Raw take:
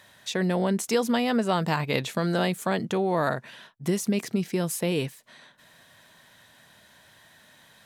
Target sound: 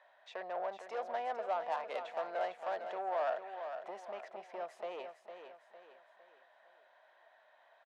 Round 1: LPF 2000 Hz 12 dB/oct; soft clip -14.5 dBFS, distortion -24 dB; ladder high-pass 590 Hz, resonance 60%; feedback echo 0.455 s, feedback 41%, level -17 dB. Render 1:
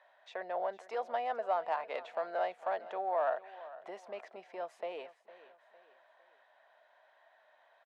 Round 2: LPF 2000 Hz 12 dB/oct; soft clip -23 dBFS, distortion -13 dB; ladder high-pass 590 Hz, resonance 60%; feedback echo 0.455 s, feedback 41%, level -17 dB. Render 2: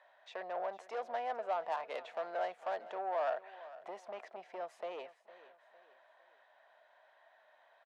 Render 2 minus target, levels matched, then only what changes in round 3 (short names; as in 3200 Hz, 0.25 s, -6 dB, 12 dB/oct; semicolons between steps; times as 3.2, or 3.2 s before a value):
echo-to-direct -8.5 dB
change: feedback echo 0.455 s, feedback 41%, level -8.5 dB